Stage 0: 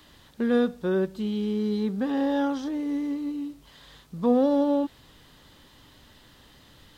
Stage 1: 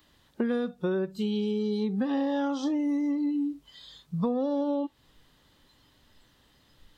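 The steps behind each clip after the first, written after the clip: spectral noise reduction 16 dB; compressor 12:1, threshold -32 dBFS, peak gain reduction 16 dB; gain +7 dB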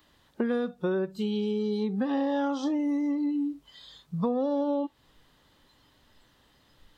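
bell 870 Hz +3.5 dB 2.6 oct; gain -1.5 dB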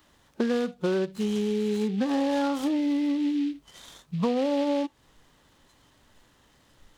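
noise-modulated delay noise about 2800 Hz, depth 0.038 ms; gain +2 dB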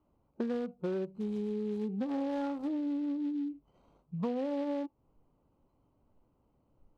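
Wiener smoothing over 25 samples; high shelf 2600 Hz -10 dB; gain -7.5 dB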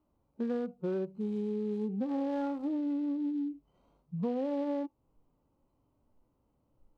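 harmonic-percussive split percussive -11 dB; gain +1 dB

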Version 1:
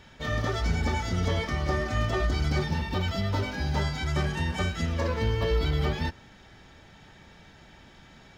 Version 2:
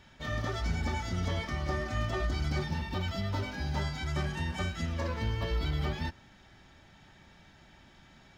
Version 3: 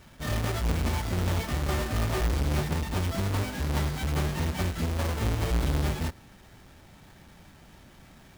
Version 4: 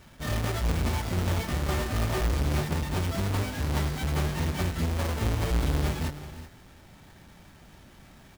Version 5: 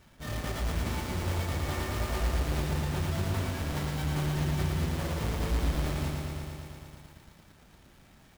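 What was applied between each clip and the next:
bell 460 Hz -8.5 dB 0.2 oct; gain -5 dB
half-waves squared off
tapped delay 0.316/0.377 s -16/-15 dB
lo-fi delay 0.114 s, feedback 80%, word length 9-bit, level -3.5 dB; gain -6 dB

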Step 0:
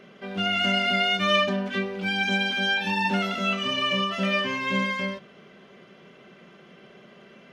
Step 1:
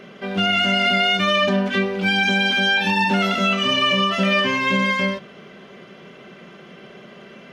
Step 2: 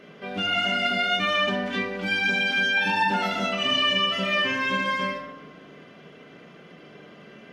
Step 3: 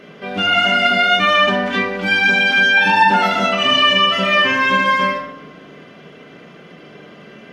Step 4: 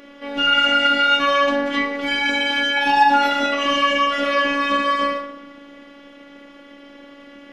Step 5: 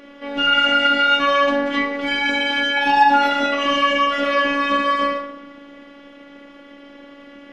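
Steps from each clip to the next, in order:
limiter -18 dBFS, peak gain reduction 7 dB; gain +8 dB
FDN reverb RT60 1.1 s, low-frequency decay 1.4×, high-frequency decay 0.45×, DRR 0.5 dB; gain -7.5 dB
dynamic EQ 1100 Hz, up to +5 dB, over -36 dBFS, Q 0.78; gain +7 dB
robotiser 282 Hz
high shelf 4900 Hz -6 dB; gain +1 dB

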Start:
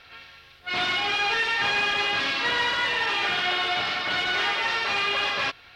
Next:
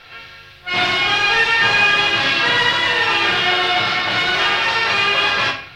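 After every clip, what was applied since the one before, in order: reverb RT60 0.45 s, pre-delay 4 ms, DRR 0.5 dB; gain +6 dB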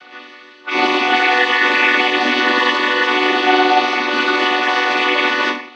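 chord vocoder minor triad, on B3; gain +2.5 dB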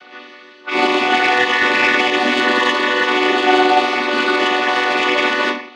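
tracing distortion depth 0.031 ms; HPF 100 Hz 6 dB/oct; small resonant body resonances 210/400/600 Hz, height 6 dB, ringing for 45 ms; gain -1 dB

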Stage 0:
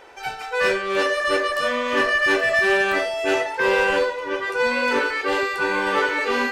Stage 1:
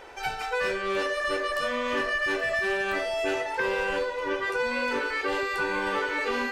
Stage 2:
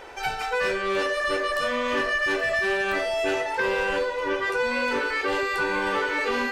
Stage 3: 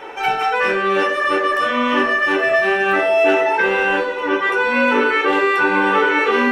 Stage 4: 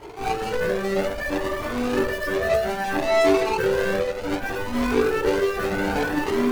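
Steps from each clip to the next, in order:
low shelf 87 Hz +9.5 dB; compressor, threshold -25 dBFS, peak gain reduction 9.5 dB
soft clip -18.5 dBFS, distortion -24 dB; gain +3.5 dB
reverb RT60 0.25 s, pre-delay 3 ms, DRR 1.5 dB
median filter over 41 samples; cascading flanger rising 0.63 Hz; gain +4.5 dB

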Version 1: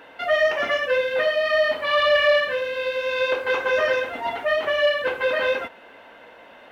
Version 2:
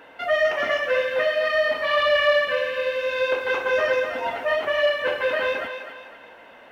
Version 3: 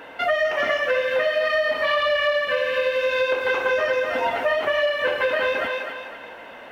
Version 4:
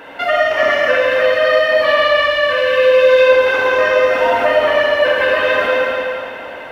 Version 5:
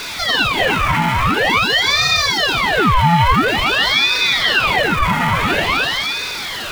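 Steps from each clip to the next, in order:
bell 3900 Hz -2.5 dB; thinning echo 0.252 s, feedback 42%, level -8 dB; gain -1 dB
compressor, threshold -25 dBFS, peak gain reduction 10.5 dB; gain +6.5 dB
reverb RT60 2.4 s, pre-delay 44 ms, DRR -2 dB; gain +4 dB
zero-crossing step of -19 dBFS; ring modulator with a swept carrier 1700 Hz, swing 80%, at 0.48 Hz; gain -1 dB

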